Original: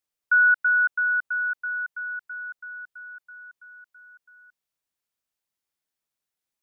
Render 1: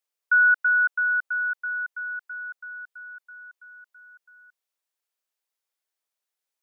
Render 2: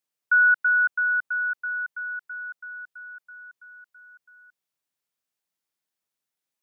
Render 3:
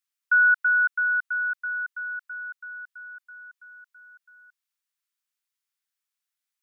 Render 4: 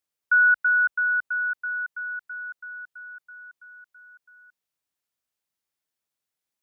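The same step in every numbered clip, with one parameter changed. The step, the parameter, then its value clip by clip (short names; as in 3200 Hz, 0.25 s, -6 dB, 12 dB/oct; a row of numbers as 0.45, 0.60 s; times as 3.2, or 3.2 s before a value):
HPF, cutoff: 380, 100, 1100, 41 Hz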